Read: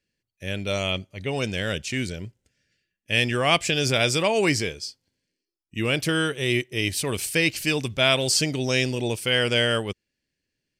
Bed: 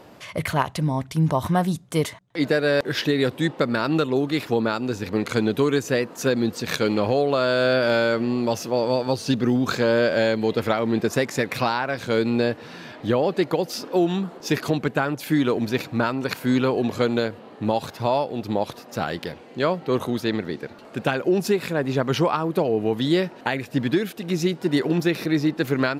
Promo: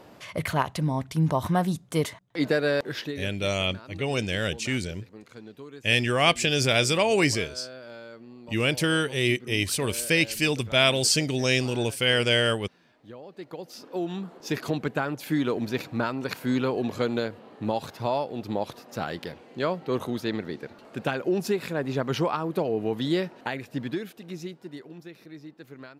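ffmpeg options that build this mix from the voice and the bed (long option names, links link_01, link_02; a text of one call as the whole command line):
ffmpeg -i stem1.wav -i stem2.wav -filter_complex "[0:a]adelay=2750,volume=-0.5dB[link_01];[1:a]volume=15dB,afade=type=out:start_time=2.62:duration=0.68:silence=0.1,afade=type=in:start_time=13.28:duration=1.48:silence=0.125893,afade=type=out:start_time=23.15:duration=1.7:silence=0.133352[link_02];[link_01][link_02]amix=inputs=2:normalize=0" out.wav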